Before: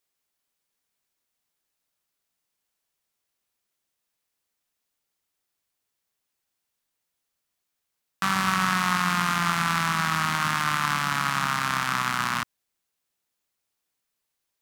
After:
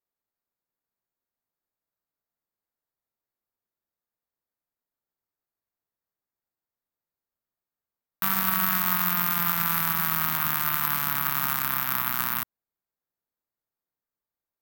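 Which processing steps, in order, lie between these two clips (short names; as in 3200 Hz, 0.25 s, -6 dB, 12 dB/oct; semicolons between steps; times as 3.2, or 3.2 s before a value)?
Wiener smoothing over 15 samples; careless resampling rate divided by 3×, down none, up zero stuff; gain -5 dB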